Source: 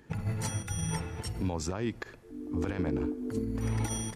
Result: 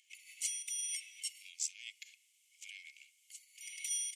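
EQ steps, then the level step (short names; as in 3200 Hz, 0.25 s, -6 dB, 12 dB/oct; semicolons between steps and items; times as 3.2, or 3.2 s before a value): rippled Chebyshev high-pass 2100 Hz, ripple 9 dB; +6.0 dB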